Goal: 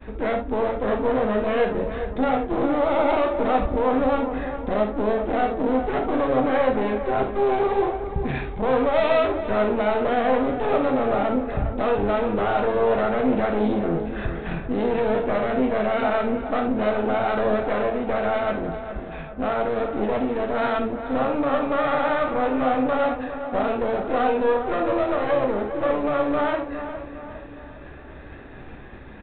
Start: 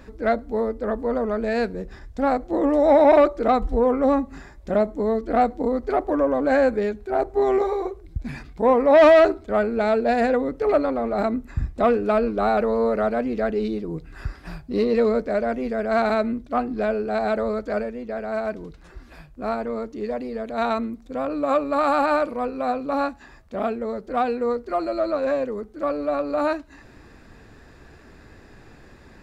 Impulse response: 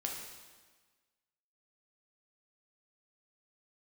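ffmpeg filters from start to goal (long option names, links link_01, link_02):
-filter_complex "[0:a]agate=range=-33dB:threshold=-42dB:ratio=3:detection=peak,asplit=2[link_01][link_02];[link_02]acompressor=threshold=-30dB:ratio=6,volume=0dB[link_03];[link_01][link_03]amix=inputs=2:normalize=0,alimiter=limit=-16.5dB:level=0:latency=1,aresample=8000,aeval=exprs='clip(val(0),-1,0.02)':channel_layout=same,aresample=44100,asplit=2[link_04][link_05];[link_05]adelay=408,lowpass=frequency=2100:poles=1,volume=-9.5dB,asplit=2[link_06][link_07];[link_07]adelay=408,lowpass=frequency=2100:poles=1,volume=0.52,asplit=2[link_08][link_09];[link_09]adelay=408,lowpass=frequency=2100:poles=1,volume=0.52,asplit=2[link_10][link_11];[link_11]adelay=408,lowpass=frequency=2100:poles=1,volume=0.52,asplit=2[link_12][link_13];[link_13]adelay=408,lowpass=frequency=2100:poles=1,volume=0.52,asplit=2[link_14][link_15];[link_15]adelay=408,lowpass=frequency=2100:poles=1,volume=0.52[link_16];[link_04][link_06][link_08][link_10][link_12][link_14][link_16]amix=inputs=7:normalize=0[link_17];[1:a]atrim=start_sample=2205,atrim=end_sample=3528[link_18];[link_17][link_18]afir=irnorm=-1:irlink=0,volume=4dB"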